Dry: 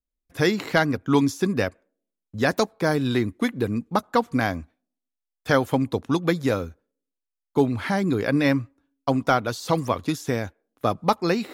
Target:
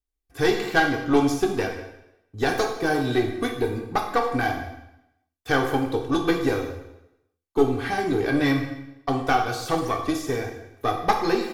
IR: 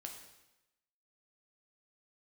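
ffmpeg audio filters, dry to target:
-filter_complex "[0:a]aecho=1:1:2.6:0.66,aeval=exprs='(tanh(2.82*val(0)+0.7)-tanh(0.7))/2.82':channel_layout=same[link_01];[1:a]atrim=start_sample=2205,asetrate=48510,aresample=44100[link_02];[link_01][link_02]afir=irnorm=-1:irlink=0,volume=7.5dB"

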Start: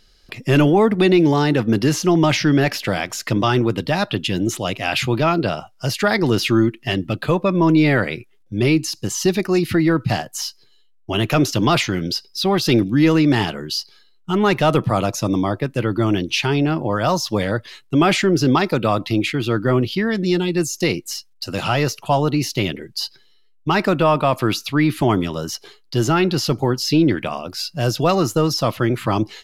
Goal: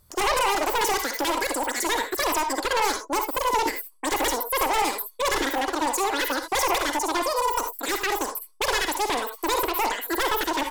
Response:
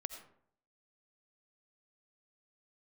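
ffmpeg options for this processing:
-filter_complex "[0:a]aeval=exprs='0.224*(abs(mod(val(0)/0.224+3,4)-2)-1)':channel_layout=same[link_01];[1:a]atrim=start_sample=2205,atrim=end_sample=6174,asetrate=24696,aresample=44100[link_02];[link_01][link_02]afir=irnorm=-1:irlink=0,asetrate=121275,aresample=44100,volume=-5.5dB"

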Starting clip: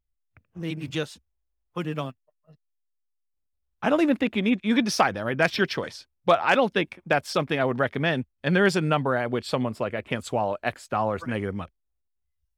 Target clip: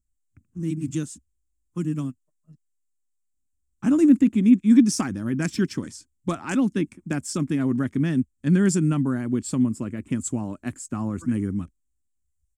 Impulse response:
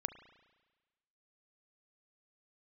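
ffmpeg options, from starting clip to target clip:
-af "firequalizer=gain_entry='entry(130,0);entry(280,6);entry(470,-17);entry(700,-20);entry(1100,-13);entry(3900,-17);entry(7400,10);entry(13000,-7)':delay=0.05:min_phase=1,volume=3.5dB"

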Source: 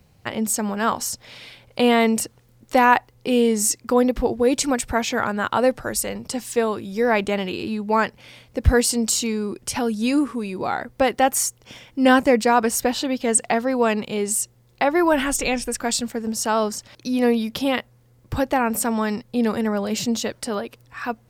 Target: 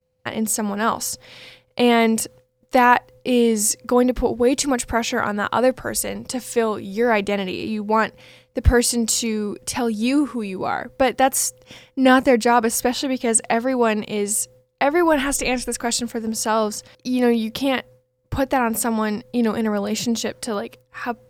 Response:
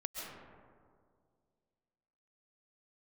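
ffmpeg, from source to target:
-af "aeval=exprs='val(0)+0.00282*sin(2*PI*510*n/s)':channel_layout=same,agate=range=-33dB:threshold=-39dB:ratio=3:detection=peak,volume=1dB"

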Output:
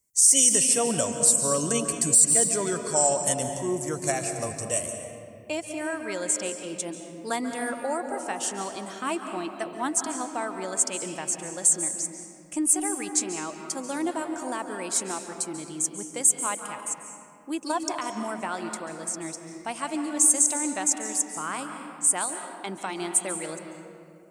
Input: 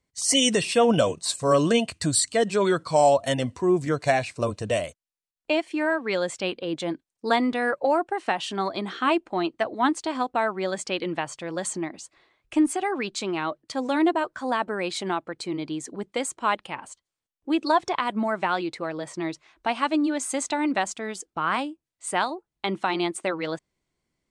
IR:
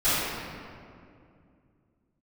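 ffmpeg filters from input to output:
-filter_complex "[0:a]aexciter=amount=13.9:drive=4.5:freq=5900,asplit=2[link_01][link_02];[1:a]atrim=start_sample=2205,adelay=133[link_03];[link_02][link_03]afir=irnorm=-1:irlink=0,volume=-22dB[link_04];[link_01][link_04]amix=inputs=2:normalize=0,alimiter=level_in=-1dB:limit=-1dB:release=50:level=0:latency=1,volume=-6.5dB"

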